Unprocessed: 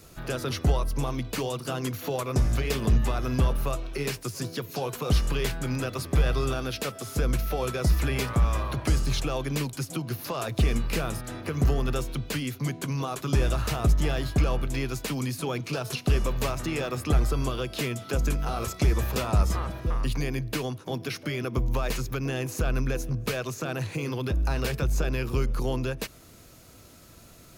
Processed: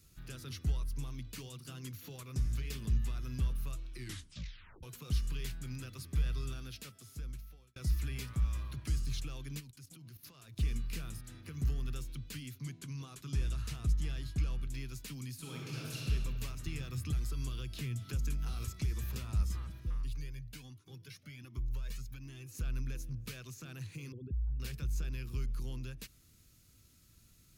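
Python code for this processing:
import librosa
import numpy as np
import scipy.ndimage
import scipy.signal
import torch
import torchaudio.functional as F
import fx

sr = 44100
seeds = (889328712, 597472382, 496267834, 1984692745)

y = fx.level_steps(x, sr, step_db=13, at=(9.59, 10.56), fade=0.02)
y = fx.lowpass(y, sr, hz=12000.0, slope=12, at=(12.6, 14.69))
y = fx.reverb_throw(y, sr, start_s=15.38, length_s=0.68, rt60_s=2.2, drr_db=-4.0)
y = fx.band_squash(y, sr, depth_pct=100, at=(16.66, 19.34))
y = fx.comb_cascade(y, sr, direction='rising', hz=1.3, at=(20.02, 22.53), fade=0.02)
y = fx.envelope_sharpen(y, sr, power=3.0, at=(24.12, 24.6))
y = fx.edit(y, sr, fx.tape_stop(start_s=3.9, length_s=0.93),
    fx.fade_out_span(start_s=6.61, length_s=1.15), tone=tone)
y = fx.tone_stack(y, sr, knobs='6-0-2')
y = F.gain(torch.from_numpy(y), 3.0).numpy()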